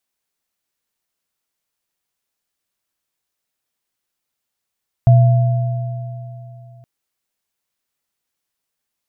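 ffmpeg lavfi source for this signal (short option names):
-f lavfi -i "aevalsrc='0.562*pow(10,-3*t/2.96)*sin(2*PI*123*t)+0.126*pow(10,-3*t/3.24)*sin(2*PI*678*t)':d=1.77:s=44100"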